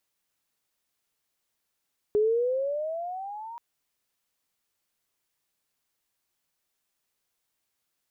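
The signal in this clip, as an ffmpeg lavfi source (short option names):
-f lavfi -i "aevalsrc='pow(10,(-19-18.5*t/1.43)/20)*sin(2*PI*413*1.43/(14.5*log(2)/12)*(exp(14.5*log(2)/12*t/1.43)-1))':d=1.43:s=44100"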